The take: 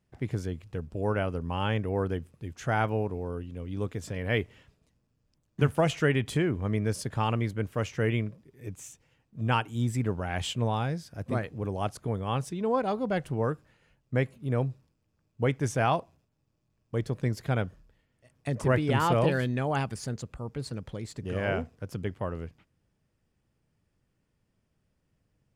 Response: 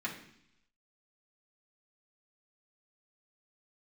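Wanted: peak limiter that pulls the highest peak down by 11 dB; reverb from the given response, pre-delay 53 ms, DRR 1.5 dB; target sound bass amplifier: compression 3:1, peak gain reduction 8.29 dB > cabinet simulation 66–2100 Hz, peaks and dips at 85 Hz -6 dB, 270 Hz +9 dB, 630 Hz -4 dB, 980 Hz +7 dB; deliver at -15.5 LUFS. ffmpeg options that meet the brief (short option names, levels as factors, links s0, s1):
-filter_complex "[0:a]alimiter=limit=0.0794:level=0:latency=1,asplit=2[s0][s1];[1:a]atrim=start_sample=2205,adelay=53[s2];[s1][s2]afir=irnorm=-1:irlink=0,volume=0.531[s3];[s0][s3]amix=inputs=2:normalize=0,acompressor=threshold=0.0224:ratio=3,highpass=f=66:w=0.5412,highpass=f=66:w=1.3066,equalizer=f=85:t=q:w=4:g=-6,equalizer=f=270:t=q:w=4:g=9,equalizer=f=630:t=q:w=4:g=-4,equalizer=f=980:t=q:w=4:g=7,lowpass=f=2100:w=0.5412,lowpass=f=2100:w=1.3066,volume=9.44"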